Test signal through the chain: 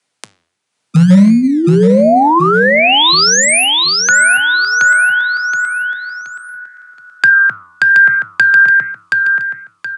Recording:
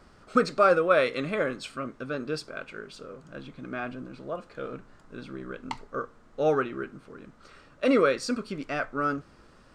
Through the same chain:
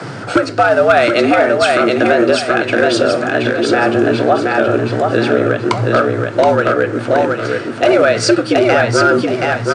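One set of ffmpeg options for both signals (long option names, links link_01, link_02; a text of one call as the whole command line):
ffmpeg -i in.wav -filter_complex "[0:a]highshelf=frequency=4900:gain=-5,bandreject=frequency=1000:width=18,bandreject=frequency=73.14:width_type=h:width=4,bandreject=frequency=146.28:width_type=h:width=4,bandreject=frequency=219.42:width_type=h:width=4,acrossover=split=100[link_01][link_02];[link_01]acrusher=samples=40:mix=1:aa=0.000001:lfo=1:lforange=40:lforate=0.55[link_03];[link_02]acompressor=threshold=-37dB:ratio=5[link_04];[link_03][link_04]amix=inputs=2:normalize=0,afreqshift=100,volume=30.5dB,asoftclip=hard,volume=-30.5dB,tremolo=f=0.98:d=0.39,flanger=delay=5.4:depth=6.8:regen=88:speed=1.1:shape=triangular,asplit=2[link_05][link_06];[link_06]aecho=0:1:724|1448|2172|2896:0.668|0.221|0.0728|0.024[link_07];[link_05][link_07]amix=inputs=2:normalize=0,aresample=22050,aresample=44100,alimiter=level_in=35dB:limit=-1dB:release=50:level=0:latency=1,volume=-1dB" out.wav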